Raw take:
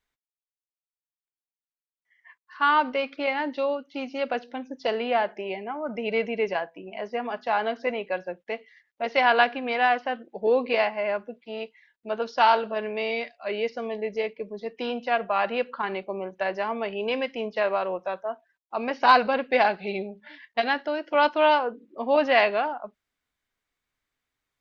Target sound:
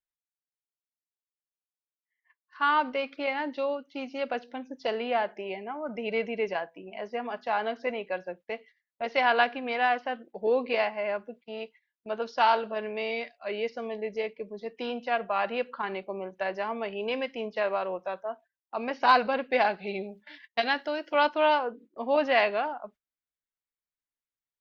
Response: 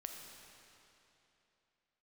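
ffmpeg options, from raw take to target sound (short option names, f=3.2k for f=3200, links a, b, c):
-filter_complex "[0:a]agate=range=-16dB:threshold=-47dB:ratio=16:detection=peak,asettb=1/sr,asplit=3[a][b][c];[a]atrim=end=20.034[d];[b]atrim=start=20.03:end=21.23,asetpts=PTS-STARTPTS,afade=t=in:d=0.004:c=qsin,afade=t=out:st=1.196:d=0.004:c=qsin,highshelf=f=3.3k:g=8.5[e];[c]atrim=start=21.226[f];[d][e]acrossfade=d=0.004:c1=hsin:c2=qsin[g];[g][f]acrossfade=d=0.004:c1=qsin:c2=hsin,volume=-3.5dB"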